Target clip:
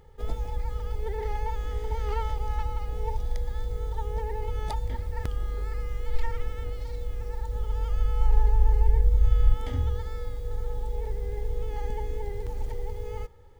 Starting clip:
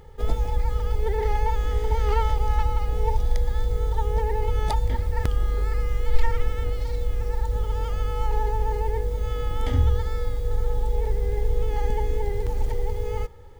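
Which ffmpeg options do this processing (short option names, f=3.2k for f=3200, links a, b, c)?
-filter_complex "[0:a]asettb=1/sr,asplit=3[a][b][c];[a]atrim=end=7.464[d];[b]atrim=start=7.46:end=9.54,asetpts=PTS-STARTPTS,afade=t=in:d=0.004:c=qsin,afade=t=out:st=2.076:d=0.004:c=qsin,asubboost=boost=11.5:cutoff=90[e];[c]atrim=start=9.536[f];[d][e]acrossfade=d=0.004:c1=hsin:c2=qsin[g];[g][f]acrossfade=d=0.004:c1=qsin:c2=hsin,volume=-7dB"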